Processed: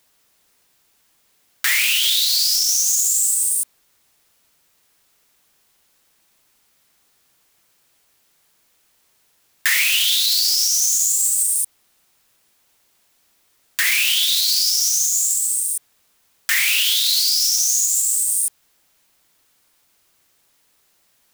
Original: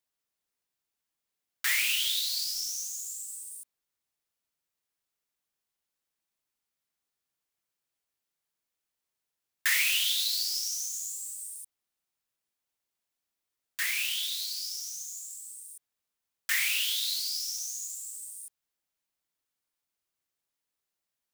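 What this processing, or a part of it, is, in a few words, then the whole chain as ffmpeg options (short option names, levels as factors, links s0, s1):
loud club master: -af "acompressor=threshold=0.0141:ratio=1.5,asoftclip=type=hard:threshold=0.0794,alimiter=level_in=39.8:limit=0.891:release=50:level=0:latency=1,volume=0.422"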